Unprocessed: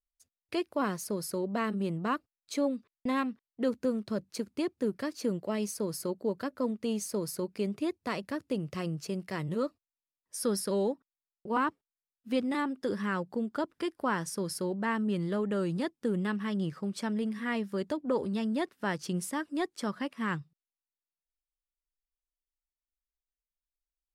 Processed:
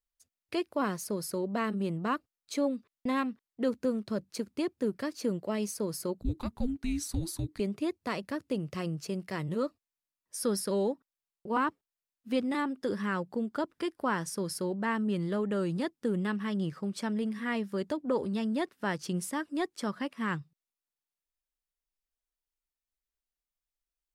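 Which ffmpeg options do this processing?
ffmpeg -i in.wav -filter_complex "[0:a]asettb=1/sr,asplit=3[link_01][link_02][link_03];[link_01]atrim=end=6.214[link_04];[link_02]atrim=start=6.21:end=7.6,asetpts=PTS-STARTPTS,afade=type=in:duration=0.004:curve=qsin,afade=type=out:start_time=1.386:duration=0.004:curve=qsin,afreqshift=-490[link_05];[link_03]atrim=start=7.596[link_06];[link_04][link_05]acrossfade=duration=0.004:curve1=hsin:curve2=qsin[link_07];[link_07][link_06]acrossfade=duration=0.004:curve1=qsin:curve2=hsin" out.wav

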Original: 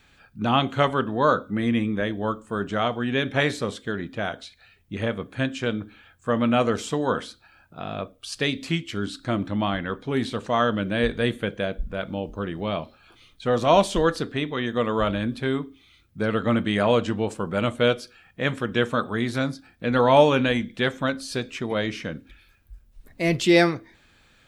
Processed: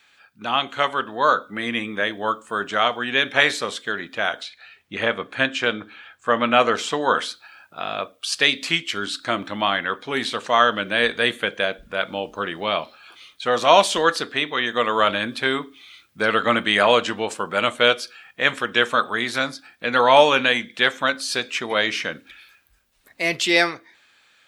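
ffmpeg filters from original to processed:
ffmpeg -i in.wav -filter_complex "[0:a]asettb=1/sr,asplit=3[link_01][link_02][link_03];[link_01]atrim=end=4.434[link_04];[link_02]atrim=start=4.43:end=7.11,asetpts=PTS-STARTPTS,afade=type=in:duration=0.004:curve=qsin,afade=type=out:start_time=2.676:duration=0.004:curve=qsin,highshelf=frequency=6100:gain=-10.5[link_05];[link_03]atrim=start=7.106[link_06];[link_04][link_05]acrossfade=duration=0.004:curve1=hsin:curve2=qsin[link_07];[link_07][link_06]acrossfade=duration=0.004:curve1=qsin:curve2=hsin,highpass=frequency=930:poles=1,equalizer=frequency=2300:width=0.3:gain=3.5,dynaudnorm=framelen=130:gausssize=17:maxgain=11.5dB" out.wav

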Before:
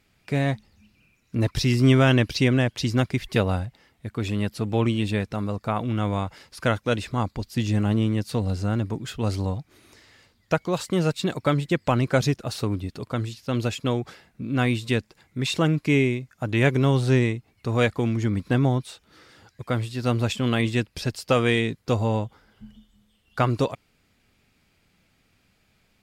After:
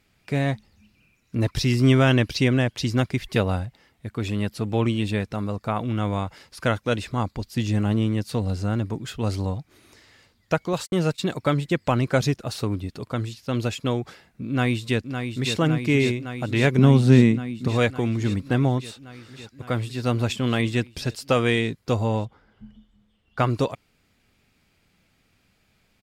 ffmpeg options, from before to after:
ffmpeg -i in.wav -filter_complex "[0:a]asettb=1/sr,asplit=3[link_01][link_02][link_03];[link_01]atrim=end=10.734[link_04];[link_02]atrim=start=10.73:end=11.34,asetpts=PTS-STARTPTS,afade=type=in:duration=0.004:curve=qsin,afade=type=out:start_time=0.606:duration=0.004:curve=qsin,agate=range=-54dB:threshold=-37dB:ratio=16:release=100:detection=peak[link_05];[link_03]atrim=start=11.336[link_06];[link_04][link_05]acrossfade=duration=0.004:curve1=hsin:curve2=qsin[link_07];[link_07][link_06]acrossfade=duration=0.004:curve1=qsin:curve2=hsin,asplit=2[link_08][link_09];[link_09]afade=type=in:start_time=14.48:duration=0.01,afade=type=out:start_time=15.55:duration=0.01,aecho=0:1:560|1120|1680|2240|2800|3360|3920|4480|5040|5600|6160|6720:0.446684|0.357347|0.285877|0.228702|0.182962|0.146369|0.117095|0.0936763|0.0749411|0.0599529|0.0479623|0.0383698[link_10];[link_08][link_10]amix=inputs=2:normalize=0,asettb=1/sr,asplit=3[link_11][link_12][link_13];[link_11]atrim=end=16.784[link_14];[link_12]atrim=start=16.78:end=17.68,asetpts=PTS-STARTPTS,afade=type=in:duration=0.004:curve=qsin,afade=type=out:start_time=0.896:duration=0.004:curve=qsin,equalizer=frequency=200:width_type=o:width=0.77:gain=15[link_15];[link_13]atrim=start=17.676[link_16];[link_14][link_15]acrossfade=duration=0.004:curve1=hsin:curve2=qsin[link_17];[link_17][link_16]acrossfade=duration=0.004:curve1=qsin:curve2=hsin,asettb=1/sr,asplit=3[link_18][link_19][link_20];[link_18]atrim=end=22.254[link_21];[link_19]atrim=start=22.25:end=23.39,asetpts=PTS-STARTPTS,afade=type=in:duration=0.004:curve=qsin,afade=type=out:start_time=1.136:duration=0.004:curve=qsin,aemphasis=mode=reproduction:type=75kf[link_22];[link_20]atrim=start=23.386[link_23];[link_21][link_22]acrossfade=duration=0.004:curve1=hsin:curve2=qsin[link_24];[link_24][link_23]acrossfade=duration=0.004:curve1=qsin:curve2=hsin" out.wav

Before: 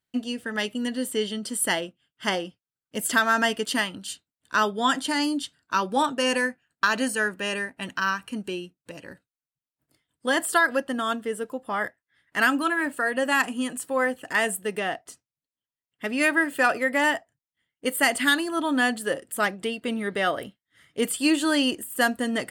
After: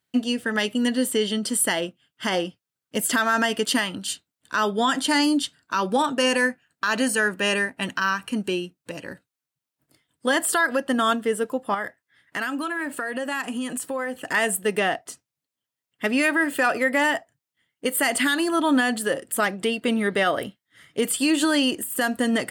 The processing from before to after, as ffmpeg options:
ffmpeg -i in.wav -filter_complex "[0:a]asettb=1/sr,asplit=3[link_01][link_02][link_03];[link_01]atrim=end=11.744[link_04];[link_02]atrim=start=11.74:end=14.3,asetpts=PTS-STARTPTS,afade=type=in:duration=0.004:curve=qsin,afade=type=out:start_time=2.556:duration=0.004:curve=qsin,acompressor=threshold=-31dB:ratio=6:attack=3.2:release=140:knee=1:detection=peak[link_05];[link_03]atrim=start=14.296[link_06];[link_04][link_05]acrossfade=duration=0.004:curve1=hsin:curve2=qsin[link_07];[link_07][link_06]acrossfade=duration=0.004:curve1=qsin:curve2=hsin,highpass=79,alimiter=limit=-18dB:level=0:latency=1:release=109,volume=6dB" out.wav

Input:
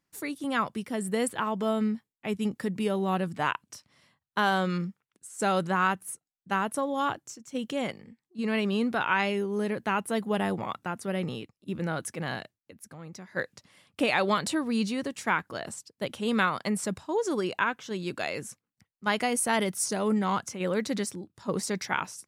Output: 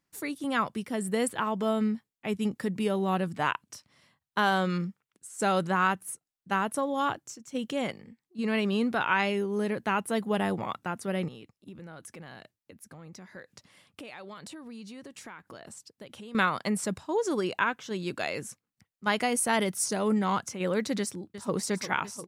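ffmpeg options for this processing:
ffmpeg -i in.wav -filter_complex "[0:a]asettb=1/sr,asplit=3[link_01][link_02][link_03];[link_01]atrim=end=11.284[link_04];[link_02]atrim=start=11.28:end=16.35,asetpts=PTS-STARTPTS,afade=type=in:duration=0.004:curve=qsin,afade=type=out:start_time=5.066:duration=0.004:curve=qsin,acompressor=threshold=-42dB:ratio=6:attack=3.2:release=140:knee=1:detection=peak[link_05];[link_03]atrim=start=16.346[link_06];[link_04][link_05]acrossfade=duration=0.004:curve1=hsin:curve2=qsin[link_07];[link_07][link_06]acrossfade=duration=0.004:curve1=qsin:curve2=hsin,asplit=2[link_08][link_09];[link_09]afade=type=in:start_time=20.99:duration=0.01,afade=type=out:start_time=21.54:duration=0.01,aecho=0:1:350|700|1050|1400|1750|2100|2450|2800|3150|3500|3850|4200:0.266073|0.212858|0.170286|0.136229|0.108983|0.0871866|0.0697493|0.0557994|0.0446396|0.0357116|0.0285693|0.0228555[link_10];[link_08][link_10]amix=inputs=2:normalize=0" out.wav

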